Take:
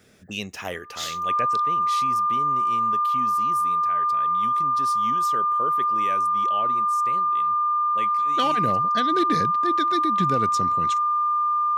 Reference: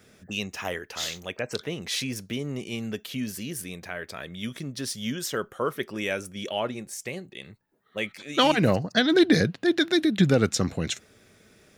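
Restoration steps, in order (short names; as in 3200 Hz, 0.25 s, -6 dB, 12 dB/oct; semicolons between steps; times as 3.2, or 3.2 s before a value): clip repair -13 dBFS; notch 1200 Hz, Q 30; gain 0 dB, from 1.47 s +6 dB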